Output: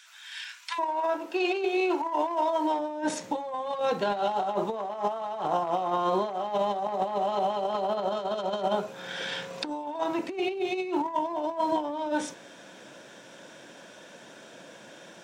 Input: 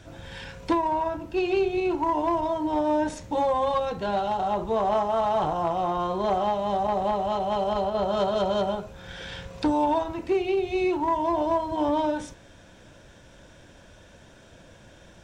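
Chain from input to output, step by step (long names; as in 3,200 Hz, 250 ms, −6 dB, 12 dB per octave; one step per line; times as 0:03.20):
Bessel high-pass filter 2,000 Hz, order 8, from 0:00.78 470 Hz, from 0:02.78 260 Hz
compressor whose output falls as the input rises −29 dBFS, ratio −0.5
level +1.5 dB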